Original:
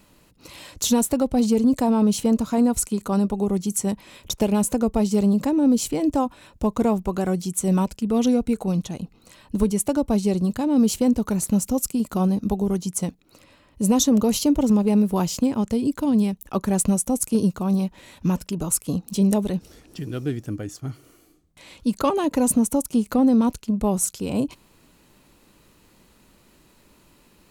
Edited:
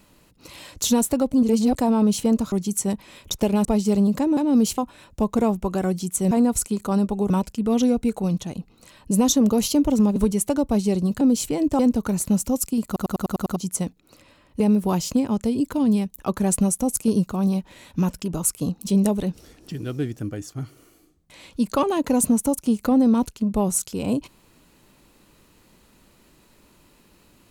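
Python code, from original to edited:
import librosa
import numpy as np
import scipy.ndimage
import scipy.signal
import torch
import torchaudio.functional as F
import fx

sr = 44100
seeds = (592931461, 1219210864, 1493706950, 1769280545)

y = fx.edit(x, sr, fx.reverse_span(start_s=1.32, length_s=0.43),
    fx.move(start_s=2.52, length_s=0.99, to_s=7.74),
    fx.cut(start_s=4.64, length_s=0.27),
    fx.swap(start_s=5.63, length_s=0.58, other_s=10.6, other_length_s=0.41),
    fx.stutter_over(start_s=12.08, slice_s=0.1, count=7),
    fx.move(start_s=13.82, length_s=1.05, to_s=9.55), tone=tone)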